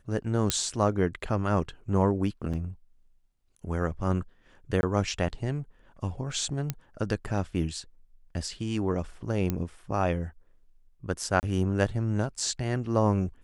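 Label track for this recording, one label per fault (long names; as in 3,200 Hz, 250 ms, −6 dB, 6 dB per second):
0.500000	0.500000	click −7 dBFS
2.530000	2.540000	drop-out 5.7 ms
4.810000	4.830000	drop-out 21 ms
6.700000	6.700000	click −14 dBFS
9.500000	9.500000	click −14 dBFS
11.400000	11.430000	drop-out 29 ms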